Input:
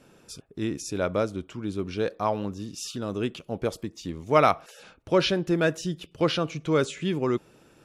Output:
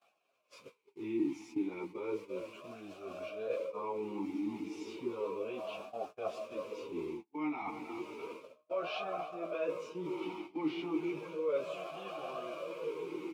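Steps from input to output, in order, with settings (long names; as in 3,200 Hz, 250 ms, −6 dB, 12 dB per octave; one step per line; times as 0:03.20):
fade-out on the ending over 1.91 s
repeating echo 191 ms, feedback 52%, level −20 dB
in parallel at −3 dB: bit-depth reduction 6 bits, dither triangular
on the sum: feedback delay with all-pass diffusion 935 ms, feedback 51%, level −12 dB
time stretch by phase vocoder 1.7×
reversed playback
downward compressor 6 to 1, threshold −29 dBFS, peak gain reduction 16 dB
reversed playback
parametric band 1,700 Hz +3 dB 0.6 octaves
noise gate −37 dBFS, range −37 dB
formant filter swept between two vowels a-u 0.33 Hz
level +5.5 dB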